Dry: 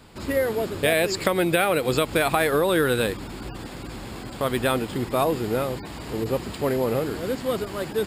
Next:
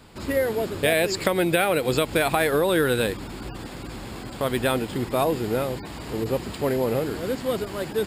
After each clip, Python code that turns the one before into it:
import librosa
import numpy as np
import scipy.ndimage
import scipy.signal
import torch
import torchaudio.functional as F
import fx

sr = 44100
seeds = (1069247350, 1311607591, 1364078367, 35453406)

y = fx.dynamic_eq(x, sr, hz=1200.0, q=5.6, threshold_db=-42.0, ratio=4.0, max_db=-4)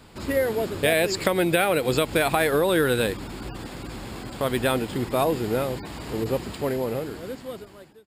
y = fx.fade_out_tail(x, sr, length_s=1.79)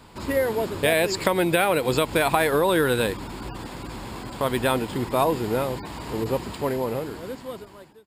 y = fx.peak_eq(x, sr, hz=970.0, db=7.5, octaves=0.31)